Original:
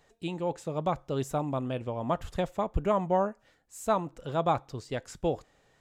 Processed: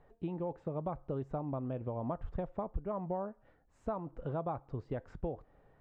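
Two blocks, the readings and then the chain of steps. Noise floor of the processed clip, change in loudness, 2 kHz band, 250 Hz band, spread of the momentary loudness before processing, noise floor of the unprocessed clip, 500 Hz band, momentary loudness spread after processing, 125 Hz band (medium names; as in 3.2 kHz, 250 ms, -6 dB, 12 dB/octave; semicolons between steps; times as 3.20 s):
-68 dBFS, -8.0 dB, -15.5 dB, -6.0 dB, 9 LU, -67 dBFS, -8.5 dB, 4 LU, -5.0 dB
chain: low-pass 1.2 kHz 12 dB/octave; bass shelf 68 Hz +8.5 dB; compression 6:1, threshold -35 dBFS, peak gain reduction 17 dB; trim +1 dB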